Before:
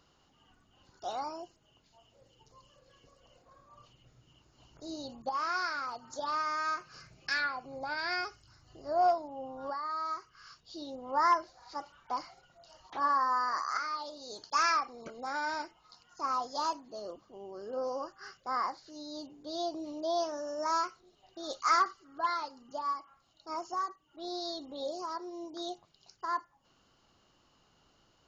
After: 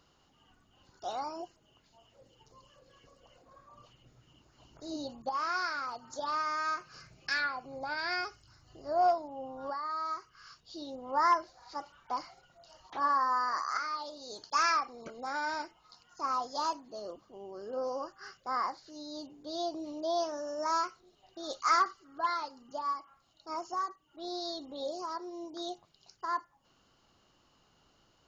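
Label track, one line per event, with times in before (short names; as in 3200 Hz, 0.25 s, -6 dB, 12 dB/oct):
1.360000	5.120000	LFO bell 3.3 Hz 220–2000 Hz +7 dB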